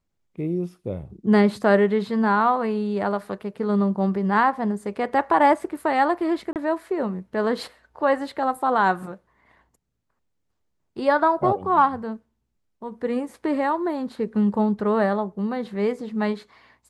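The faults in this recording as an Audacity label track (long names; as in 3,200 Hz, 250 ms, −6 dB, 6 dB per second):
6.530000	6.560000	drop-out 28 ms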